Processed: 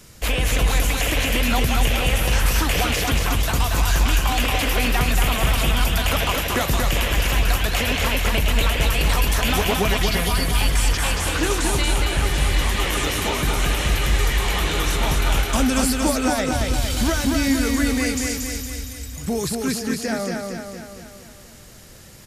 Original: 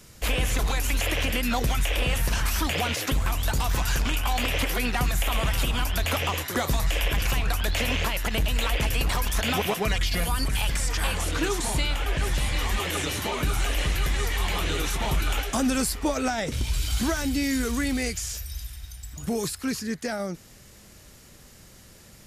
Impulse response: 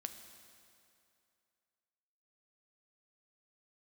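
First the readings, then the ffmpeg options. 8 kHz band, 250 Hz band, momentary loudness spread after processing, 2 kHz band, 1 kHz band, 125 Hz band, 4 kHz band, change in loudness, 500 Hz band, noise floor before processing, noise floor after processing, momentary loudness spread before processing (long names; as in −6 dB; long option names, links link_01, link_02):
+5.5 dB, +6.0 dB, 5 LU, +5.5 dB, +5.5 dB, +5.5 dB, +5.5 dB, +5.5 dB, +5.5 dB, −50 dBFS, −43 dBFS, 4 LU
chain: -af "aecho=1:1:231|462|693|924|1155|1386|1617|1848:0.668|0.374|0.21|0.117|0.0657|0.0368|0.0206|0.0115,volume=3.5dB"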